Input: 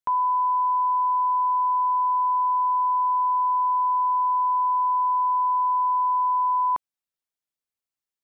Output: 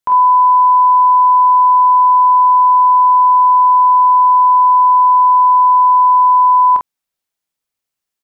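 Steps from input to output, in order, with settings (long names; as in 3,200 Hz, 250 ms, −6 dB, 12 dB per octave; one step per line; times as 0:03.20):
ambience of single reflections 27 ms −10 dB, 47 ms −5.5 dB
level +8 dB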